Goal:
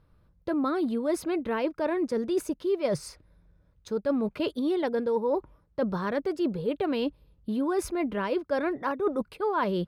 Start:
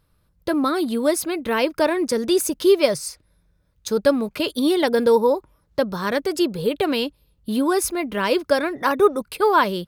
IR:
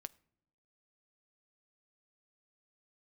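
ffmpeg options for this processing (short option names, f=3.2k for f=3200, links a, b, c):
-af "lowpass=f=1.3k:p=1,areverse,acompressor=threshold=-28dB:ratio=5,areverse,volume=2.5dB"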